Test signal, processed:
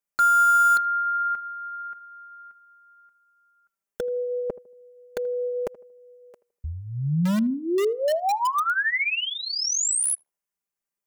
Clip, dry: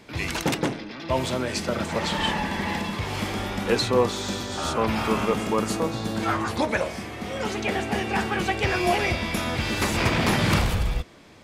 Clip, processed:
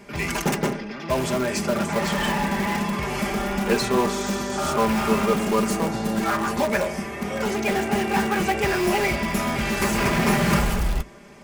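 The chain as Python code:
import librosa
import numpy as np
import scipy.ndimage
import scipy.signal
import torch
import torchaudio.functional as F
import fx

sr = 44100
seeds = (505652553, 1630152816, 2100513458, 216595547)

p1 = fx.peak_eq(x, sr, hz=3800.0, db=-10.0, octaves=0.61)
p2 = p1 + 0.75 * np.pad(p1, (int(5.0 * sr / 1000.0), 0))[:len(p1)]
p3 = (np.mod(10.0 ** (20.0 / 20.0) * p2 + 1.0, 2.0) - 1.0) / 10.0 ** (20.0 / 20.0)
p4 = p2 + F.gain(torch.from_numpy(p3), -10.0).numpy()
y = fx.echo_tape(p4, sr, ms=79, feedback_pct=35, wet_db=-18, lp_hz=1100.0, drive_db=9.0, wow_cents=23)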